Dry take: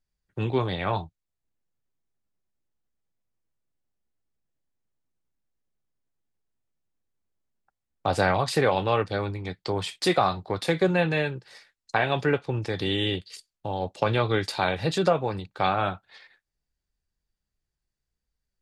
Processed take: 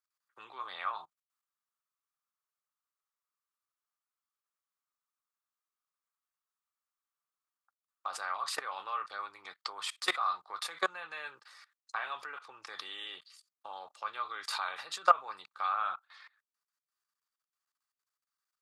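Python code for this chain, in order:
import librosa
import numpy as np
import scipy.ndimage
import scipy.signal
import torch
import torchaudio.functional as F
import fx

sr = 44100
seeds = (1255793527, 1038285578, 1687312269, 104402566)

y = fx.peak_eq(x, sr, hz=1700.0, db=-6.5, octaves=2.6)
y = fx.level_steps(y, sr, step_db=21)
y = fx.highpass_res(y, sr, hz=1200.0, q=6.4)
y = y * 10.0 ** (4.5 / 20.0)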